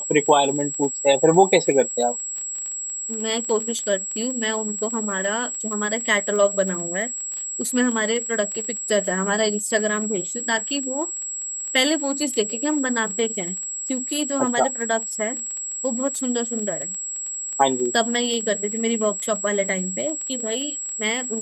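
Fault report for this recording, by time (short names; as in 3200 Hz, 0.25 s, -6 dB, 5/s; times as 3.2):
crackle 14/s -27 dBFS
tone 7700 Hz -27 dBFS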